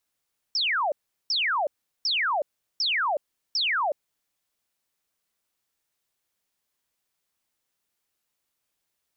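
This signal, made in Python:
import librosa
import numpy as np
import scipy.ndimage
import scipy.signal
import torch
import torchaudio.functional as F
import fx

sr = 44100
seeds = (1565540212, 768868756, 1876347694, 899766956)

y = fx.laser_zaps(sr, level_db=-22.0, start_hz=5700.0, end_hz=540.0, length_s=0.37, wave='sine', shots=5, gap_s=0.38)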